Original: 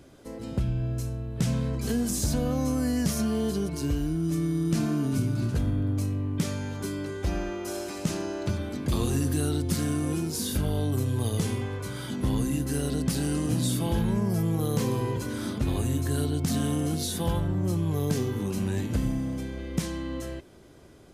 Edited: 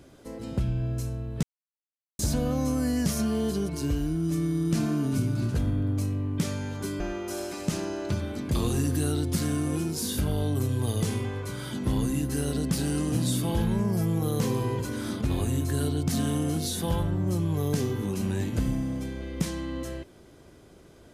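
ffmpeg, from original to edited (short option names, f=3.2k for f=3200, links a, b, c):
-filter_complex "[0:a]asplit=4[a][b][c][d];[a]atrim=end=1.43,asetpts=PTS-STARTPTS,afade=t=out:st=1.426:d=0.004:c=hsin[e];[b]atrim=start=1.43:end=2.19,asetpts=PTS-STARTPTS,volume=0[f];[c]atrim=start=2.19:end=7.002,asetpts=PTS-STARTPTS,afade=t=in:d=0.004:c=hsin[g];[d]atrim=start=7.368[h];[e][f][g]concat=n=3:v=0:a=1[i];[i][h]acrossfade=d=0.004:c1=hsin:c2=hsin"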